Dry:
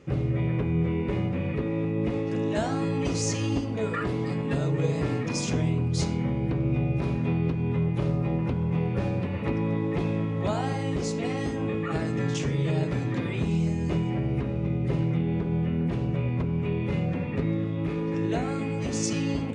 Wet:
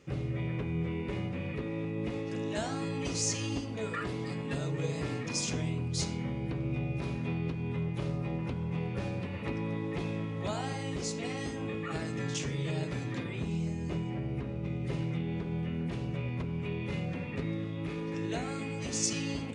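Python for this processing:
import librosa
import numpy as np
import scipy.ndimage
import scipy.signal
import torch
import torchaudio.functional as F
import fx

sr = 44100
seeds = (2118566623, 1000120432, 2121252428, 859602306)

y = fx.high_shelf(x, sr, hz=2100.0, db=fx.steps((0.0, 9.0), (13.22, 3.0), (14.63, 10.5)))
y = y * librosa.db_to_amplitude(-8.0)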